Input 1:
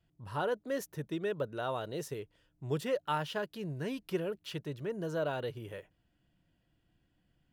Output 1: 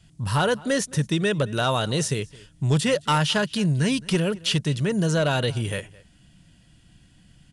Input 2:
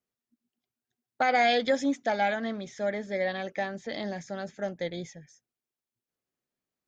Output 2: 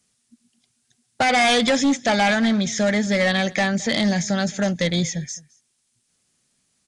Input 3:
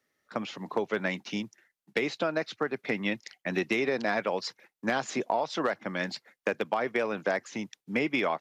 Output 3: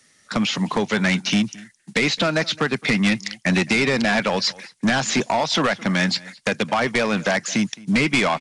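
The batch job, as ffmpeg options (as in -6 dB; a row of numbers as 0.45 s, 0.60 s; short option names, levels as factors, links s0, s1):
-filter_complex "[0:a]acrossover=split=4000[s0][s1];[s1]acompressor=threshold=0.00282:ratio=4:attack=1:release=60[s2];[s0][s2]amix=inputs=2:normalize=0,lowshelf=f=270:t=q:w=1.5:g=6.5,asplit=2[s3][s4];[s4]acompressor=threshold=0.0178:ratio=6,volume=1.12[s5];[s3][s5]amix=inputs=2:normalize=0,crystalizer=i=5.5:c=0,asoftclip=type=hard:threshold=0.0944,asplit=2[s6][s7];[s7]adelay=215.7,volume=0.0794,highshelf=f=4000:g=-4.85[s8];[s6][s8]amix=inputs=2:normalize=0,aresample=22050,aresample=44100,volume=2"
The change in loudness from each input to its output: +13.5 LU, +9.5 LU, +10.5 LU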